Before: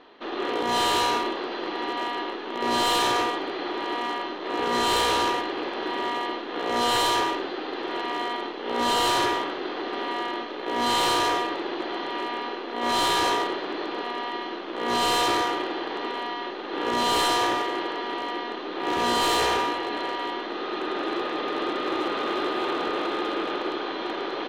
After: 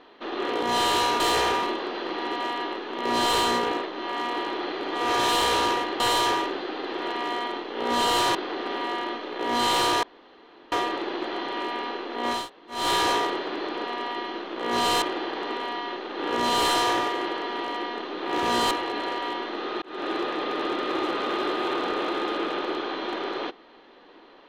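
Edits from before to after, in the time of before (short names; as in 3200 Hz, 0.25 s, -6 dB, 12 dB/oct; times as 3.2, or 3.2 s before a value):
2.9–4.98 reverse
5.57–6.89 cut
9.24–9.62 cut
11.3 insert room tone 0.69 s
12.96 insert room tone 0.41 s, crossfade 0.24 s
15.19–15.56 cut
19.25–19.68 move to 1.2
20.79–21.05 fade in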